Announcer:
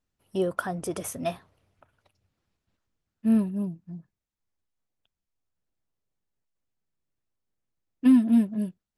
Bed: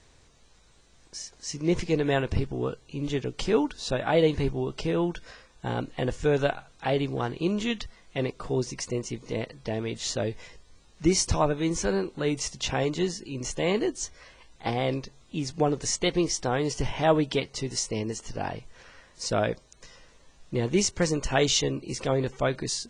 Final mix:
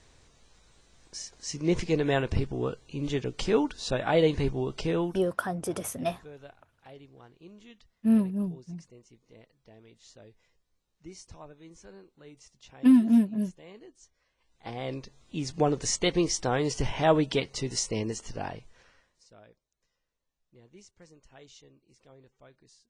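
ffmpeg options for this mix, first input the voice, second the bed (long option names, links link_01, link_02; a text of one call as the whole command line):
ffmpeg -i stem1.wav -i stem2.wav -filter_complex "[0:a]adelay=4800,volume=-0.5dB[link_01];[1:a]volume=22dB,afade=type=out:start_time=4.94:duration=0.4:silence=0.0749894,afade=type=in:start_time=14.36:duration=1.27:silence=0.0707946,afade=type=out:start_time=18.07:duration=1.18:silence=0.0354813[link_02];[link_01][link_02]amix=inputs=2:normalize=0" out.wav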